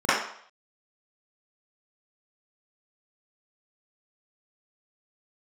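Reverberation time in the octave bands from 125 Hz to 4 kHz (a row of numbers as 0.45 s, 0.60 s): 0.35 s, 0.45 s, 0.60 s, 0.65 s, 0.60 s, 0.60 s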